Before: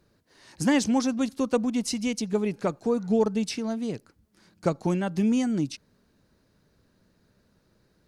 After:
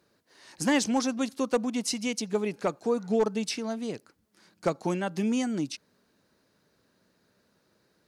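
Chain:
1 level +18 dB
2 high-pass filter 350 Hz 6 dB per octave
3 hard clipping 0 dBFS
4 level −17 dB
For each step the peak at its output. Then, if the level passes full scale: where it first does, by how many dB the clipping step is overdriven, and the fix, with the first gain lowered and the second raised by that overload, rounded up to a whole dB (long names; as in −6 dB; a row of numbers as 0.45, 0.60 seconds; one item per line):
+7.0, +5.0, 0.0, −17.0 dBFS
step 1, 5.0 dB
step 1 +13 dB, step 4 −12 dB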